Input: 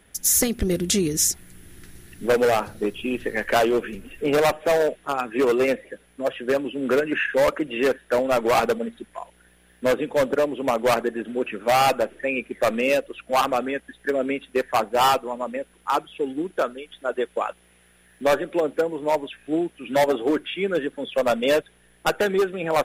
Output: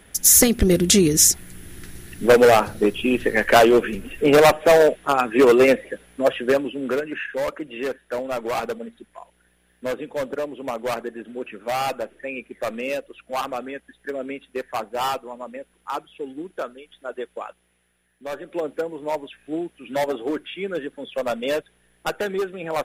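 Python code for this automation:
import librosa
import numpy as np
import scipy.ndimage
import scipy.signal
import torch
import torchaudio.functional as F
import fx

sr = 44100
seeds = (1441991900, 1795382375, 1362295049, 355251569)

y = fx.gain(x, sr, db=fx.line((6.34, 6.0), (7.14, -6.0), (17.23, -6.0), (18.24, -13.5), (18.59, -4.0)))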